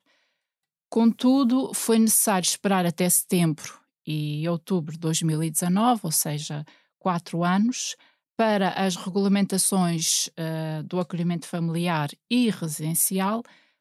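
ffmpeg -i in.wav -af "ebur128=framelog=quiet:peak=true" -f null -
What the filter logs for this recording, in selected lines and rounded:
Integrated loudness:
  I:         -23.6 LUFS
  Threshold: -34.0 LUFS
Loudness range:
  LRA:         4.1 LU
  Threshold: -44.1 LUFS
  LRA low:   -25.7 LUFS
  LRA high:  -21.5 LUFS
True peak:
  Peak:       -9.2 dBFS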